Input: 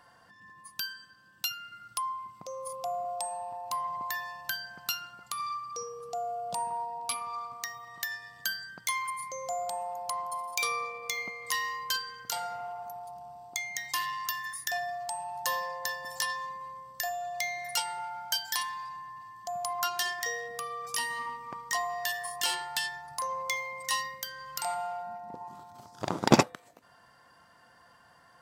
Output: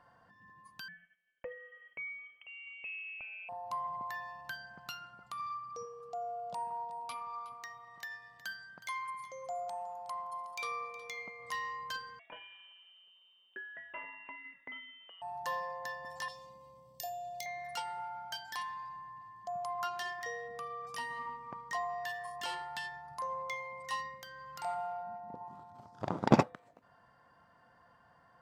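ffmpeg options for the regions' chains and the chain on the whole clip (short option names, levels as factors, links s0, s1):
-filter_complex "[0:a]asettb=1/sr,asplit=3[s0][s1][s2];[s0]atrim=end=0.884[s3];[s1]atrim=start=0.88:end=3.49,asetpts=PTS-STARTPTS,afade=t=in:d=0.004:c=qsin,afade=t=out:st=2.606:d=0.004:c=qsin,agate=range=0.0224:threshold=0.00251:ratio=3:release=100:detection=peak,lowpass=f=2800:t=q:w=0.5098,lowpass=f=2800:t=q:w=0.6013,lowpass=f=2800:t=q:w=0.9,lowpass=f=2800:t=q:w=2.563,afreqshift=-3300[s4];[s2]atrim=start=3.486[s5];[s3][s4]acrossfade=d=0.004:c1=hsin:c2=qsin[s6];[s6][s5]acrossfade=d=0.004:c1=qsin:c2=hsin,asettb=1/sr,asplit=3[s7][s8][s9];[s7]atrim=end=5.854[s10];[s8]atrim=start=5.85:end=11.39,asetpts=PTS-STARTPTS,afade=t=in:d=0.004:c=qsin,afade=t=out:st=5.536:d=0.004:c=qsin,lowshelf=f=420:g=-7,aecho=1:1:366:0.168,atrim=end_sample=244314[s11];[s9]atrim=start=11.386[s12];[s10][s11]acrossfade=d=0.004:c1=hsin:c2=qsin[s13];[s13][s12]acrossfade=d=0.004:c1=qsin:c2=hsin,asettb=1/sr,asplit=3[s14][s15][s16];[s14]atrim=end=12.194[s17];[s15]atrim=start=12.19:end=15.22,asetpts=PTS-STARTPTS,afade=t=in:d=0.004:c=qsin,afade=t=out:st=3.026:d=0.004:c=qsin,highpass=120,lowpass=f=3200:t=q:w=0.5098,lowpass=f=3200:t=q:w=0.6013,lowpass=f=3200:t=q:w=0.9,lowpass=f=3200:t=q:w=2.563,afreqshift=-3800,acrossover=split=170 2400:gain=0.178 1 0.126[s18][s19][s20];[s18][s19][s20]amix=inputs=3:normalize=0[s21];[s16]atrim=start=15.216[s22];[s17][s21]acrossfade=d=0.004:c1=hsin:c2=qsin[s23];[s23][s22]acrossfade=d=0.004:c1=qsin:c2=hsin,asettb=1/sr,asplit=3[s24][s25][s26];[s24]atrim=end=16.284[s27];[s25]atrim=start=16.28:end=17.46,asetpts=PTS-STARTPTS,afade=t=in:d=0.004:c=qsin,afade=t=out:st=1.176:d=0.004:c=qsin,asuperstop=centerf=1400:order=4:qfactor=0.76,aemphasis=mode=production:type=50kf,asplit=2[s28][s29];[s29]adelay=25,volume=0.224[s30];[s28][s30]amix=inputs=2:normalize=0,atrim=end_sample=52038[s31];[s26]atrim=start=17.456[s32];[s27][s31]acrossfade=d=0.004:c1=hsin:c2=qsin[s33];[s33][s32]acrossfade=d=0.004:c1=qsin:c2=hsin,lowpass=f=1100:p=1,equalizer=f=350:t=o:w=0.68:g=-3.5,volume=0.841"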